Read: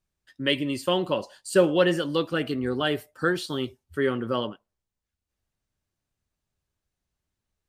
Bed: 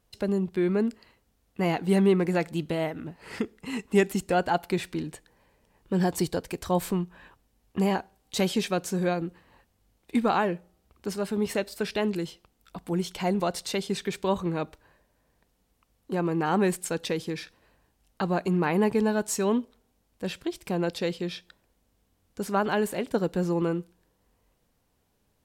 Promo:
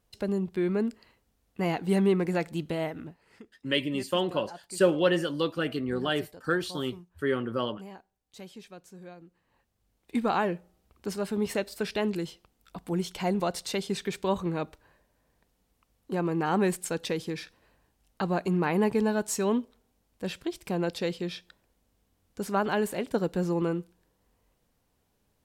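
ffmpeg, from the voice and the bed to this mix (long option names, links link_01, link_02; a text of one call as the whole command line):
ffmpeg -i stem1.wav -i stem2.wav -filter_complex "[0:a]adelay=3250,volume=-3dB[link_01];[1:a]volume=16dB,afade=type=out:start_time=3.01:duration=0.24:silence=0.133352,afade=type=in:start_time=9.3:duration=1.16:silence=0.11885[link_02];[link_01][link_02]amix=inputs=2:normalize=0" out.wav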